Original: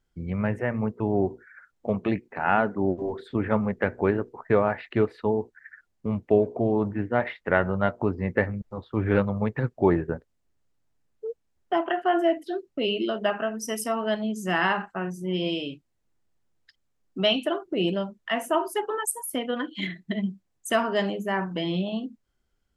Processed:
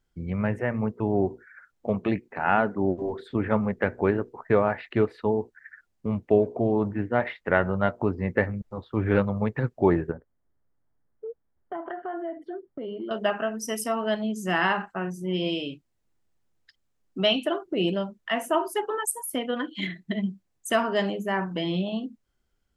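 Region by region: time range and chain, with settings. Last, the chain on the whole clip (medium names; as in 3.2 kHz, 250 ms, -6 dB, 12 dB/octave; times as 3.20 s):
10.11–13.11 s: Savitzky-Golay filter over 41 samples + compression 3:1, threshold -33 dBFS
whole clip: none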